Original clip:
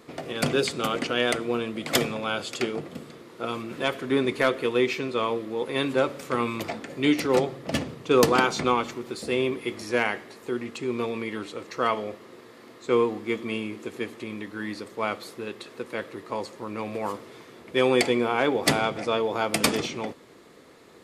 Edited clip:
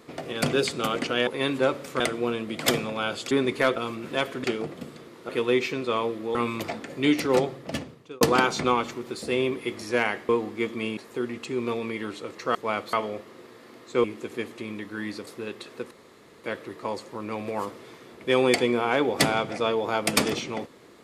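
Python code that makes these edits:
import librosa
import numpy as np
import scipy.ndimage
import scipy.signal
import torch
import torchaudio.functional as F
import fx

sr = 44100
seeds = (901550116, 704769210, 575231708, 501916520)

y = fx.edit(x, sr, fx.swap(start_s=2.58, length_s=0.85, other_s=4.11, other_length_s=0.45),
    fx.move(start_s=5.62, length_s=0.73, to_s=1.27),
    fx.fade_out_span(start_s=7.45, length_s=0.76),
    fx.move(start_s=12.98, length_s=0.68, to_s=10.29),
    fx.move(start_s=14.89, length_s=0.38, to_s=11.87),
    fx.insert_room_tone(at_s=15.91, length_s=0.53), tone=tone)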